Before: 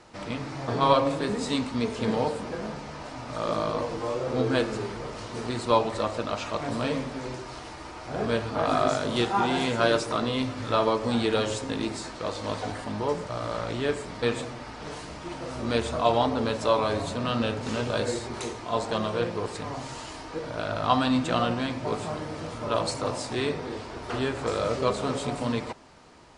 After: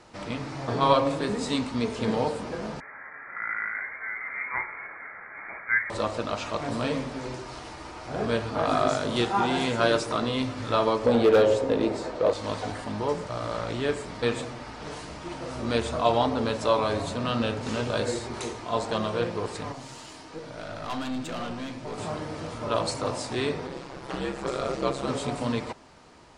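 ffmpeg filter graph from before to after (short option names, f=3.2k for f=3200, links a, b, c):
-filter_complex "[0:a]asettb=1/sr,asplit=3[a][b][c];[a]atrim=end=2.804[d];[b]atrim=start=2.8:end=5.9,asetpts=PTS-STARTPTS,afade=t=in:d=0.004:c=qsin,afade=t=out:st=3.096:d=0.004:c=qsin,highpass=660,lowpass=f=2.2k:t=q:w=0.5098,lowpass=f=2.2k:t=q:w=0.6013,lowpass=f=2.2k:t=q:w=0.9,lowpass=f=2.2k:t=q:w=2.563,afreqshift=-2600[e];[c]atrim=start=5.896[f];[d][e]acrossfade=d=0.004:c1=hsin:c2=qsin[g];[g][f]acrossfade=d=0.004:c1=qsin:c2=hsin,asettb=1/sr,asplit=3[h][i][j];[h]atrim=end=11.064[k];[i]atrim=start=11.06:end=12.33,asetpts=PTS-STARTPTS,afade=t=in:d=0.004:c=qsin,afade=t=out:st=1.266:d=0.004:c=qsin,lowpass=f=3.2k:p=1,equalizer=f=510:t=o:w=0.94:g=13,volume=14dB,asoftclip=hard,volume=-14dB[l];[j]atrim=start=12.326[m];[k][l]acrossfade=d=0.004:c1=hsin:c2=qsin[n];[n][m]acrossfade=d=0.004:c1=qsin:c2=hsin,asettb=1/sr,asplit=3[o][p][q];[o]atrim=end=19.724[r];[p]atrim=start=19.72:end=21.98,asetpts=PTS-STARTPTS,afade=t=in:d=0.004:c=qsin,afade=t=out:st=2.256:d=0.004:c=qsin,highpass=120,equalizer=f=860:w=0.36:g=-4.5,aeval=exprs='(tanh(25.1*val(0)+0.45)-tanh(0.45))/25.1':c=same[s];[q]atrim=start=21.976[t];[r][s]acrossfade=d=0.004:c1=hsin:c2=qsin[u];[u][t]acrossfade=d=0.004:c1=qsin:c2=hsin,asettb=1/sr,asplit=3[v][w][x];[v]atrim=end=23.674[y];[w]atrim=start=23.67:end=25.08,asetpts=PTS-STARTPTS,afade=t=in:d=0.004:c=qsin,afade=t=out:st=1.406:d=0.004:c=qsin,aecho=1:1:4.6:0.39,atrim=end_sample=62181,aeval=exprs='val(0)*sin(2*PI*66*n/s)':c=same[z];[x]atrim=start=25.076[aa];[y][z]acrossfade=d=0.004:c1=hsin:c2=qsin[ab];[ab][aa]acrossfade=d=0.004:c1=qsin:c2=hsin"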